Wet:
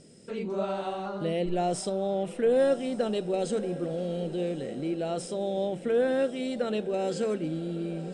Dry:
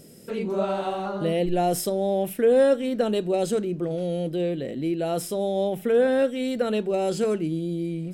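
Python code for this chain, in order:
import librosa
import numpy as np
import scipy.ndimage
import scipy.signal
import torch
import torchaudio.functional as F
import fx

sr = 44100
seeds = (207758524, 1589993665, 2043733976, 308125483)

y = scipy.signal.sosfilt(scipy.signal.ellip(4, 1.0, 40, 9000.0, 'lowpass', fs=sr, output='sos'), x)
y = fx.echo_diffused(y, sr, ms=1087, feedback_pct=55, wet_db=-14.5)
y = F.gain(torch.from_numpy(y), -4.0).numpy()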